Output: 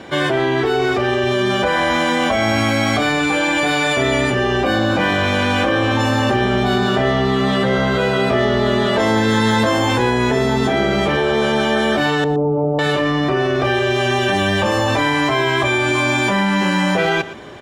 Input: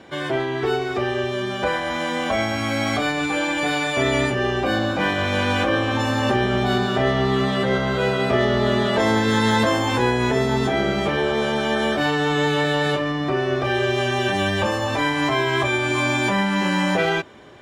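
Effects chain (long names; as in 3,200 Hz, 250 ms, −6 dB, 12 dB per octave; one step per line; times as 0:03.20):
0:12.24–0:12.79: inverse Chebyshev low-pass filter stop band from 1,600 Hz, stop band 40 dB
in parallel at +1 dB: compressor whose output falls as the input rises −26 dBFS, ratio −1
on the sum: single-tap delay 118 ms −16 dB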